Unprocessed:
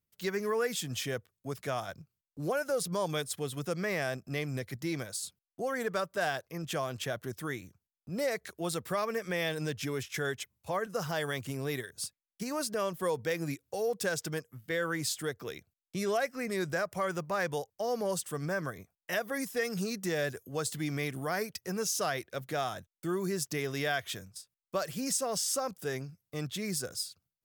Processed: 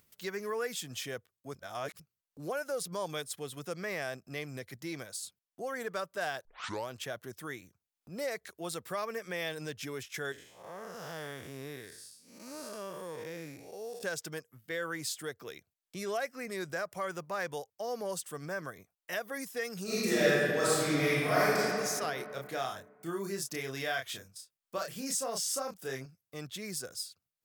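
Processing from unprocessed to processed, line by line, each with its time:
1.55–2.00 s: reverse
6.45 s: tape start 0.43 s
10.32–14.03 s: spectral blur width 228 ms
19.83–21.66 s: reverb throw, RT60 2.4 s, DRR -11 dB
22.16–26.06 s: doubling 30 ms -4 dB
whole clip: upward compressor, threshold -47 dBFS; bass shelf 220 Hz -8 dB; trim -3 dB

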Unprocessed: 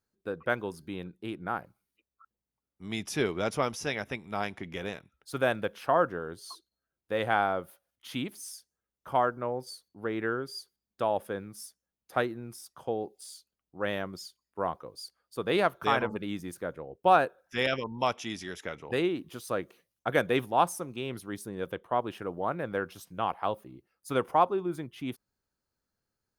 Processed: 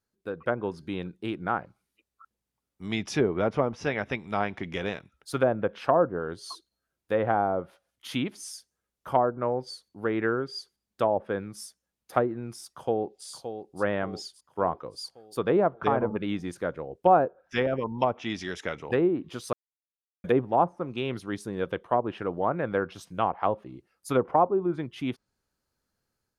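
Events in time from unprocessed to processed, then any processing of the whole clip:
12.72–13.26 s: echo throw 570 ms, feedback 55%, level -9.5 dB
19.53–20.24 s: mute
whole clip: low-pass that closes with the level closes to 760 Hz, closed at -24 dBFS; level rider gain up to 5 dB

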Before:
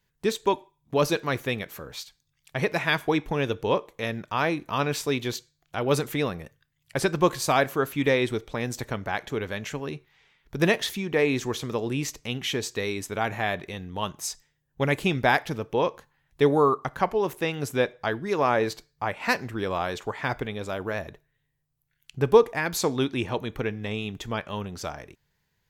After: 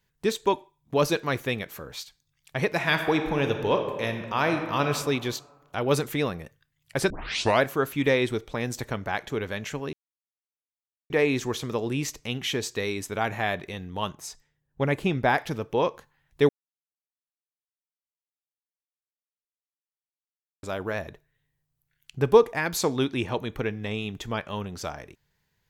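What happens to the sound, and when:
2.75–4.87 s: reverb throw, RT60 1.5 s, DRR 5.5 dB
7.10 s: tape start 0.52 s
9.93–11.10 s: mute
14.15–15.38 s: treble shelf 2.3 kHz -8 dB
16.49–20.63 s: mute

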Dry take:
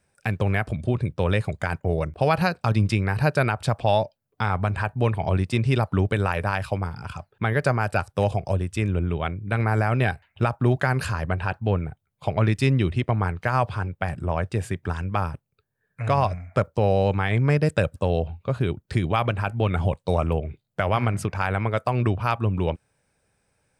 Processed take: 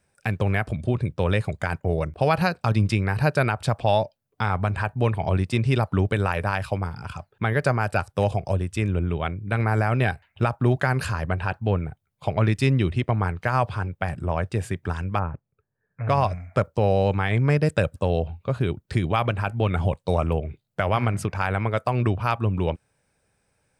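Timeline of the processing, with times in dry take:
15.19–16.09 s: Bessel low-pass 1.5 kHz, order 8

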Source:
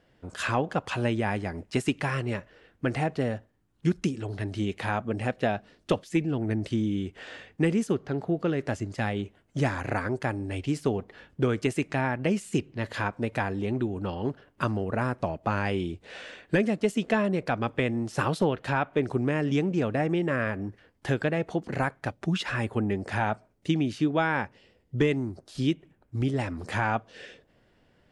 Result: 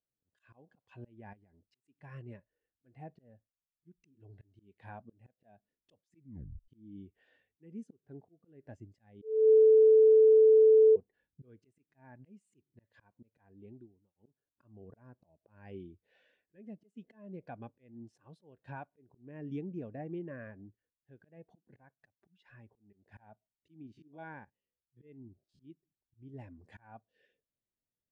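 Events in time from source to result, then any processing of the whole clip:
1.33–1.84 s: compression 12:1, threshold -37 dBFS
6.19 s: tape stop 0.49 s
9.22–10.96 s: bleep 438 Hz -11 dBFS
13.41–14.15 s: fade out
22.16–22.93 s: compression 3:1, threshold -32 dBFS
23.82–25.70 s: spectrogram pixelated in time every 50 ms
whole clip: band-stop 1.3 kHz, Q 7.2; slow attack 284 ms; spectral contrast expander 1.5:1; trim -6 dB

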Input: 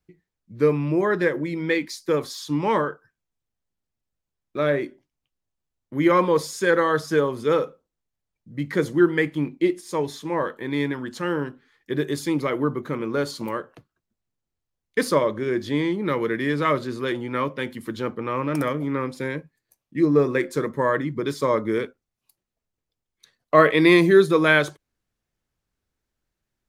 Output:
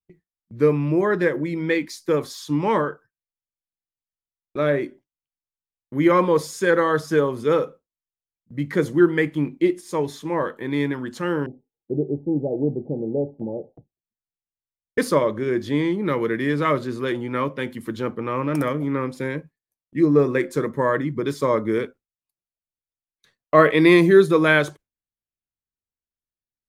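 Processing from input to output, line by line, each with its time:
11.46–14.98 s: Chebyshev low-pass 830 Hz, order 8
whole clip: bass shelf 490 Hz +2.5 dB; gate with hold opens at -37 dBFS; peaking EQ 4.4 kHz -2.5 dB

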